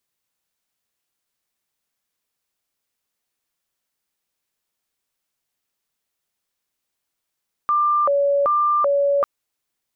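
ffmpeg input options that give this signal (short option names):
-f lavfi -i "aevalsrc='0.178*sin(2*PI*(877.5*t+312.5/1.3*(0.5-abs(mod(1.3*t,1)-0.5))))':d=1.55:s=44100"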